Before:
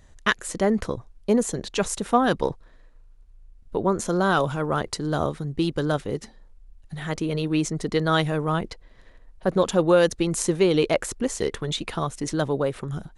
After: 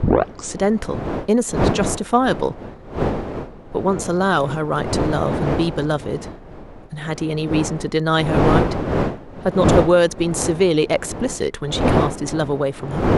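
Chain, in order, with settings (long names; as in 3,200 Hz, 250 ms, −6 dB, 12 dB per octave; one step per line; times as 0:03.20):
turntable start at the beginning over 0.55 s
wind on the microphone 510 Hz −27 dBFS
level +3.5 dB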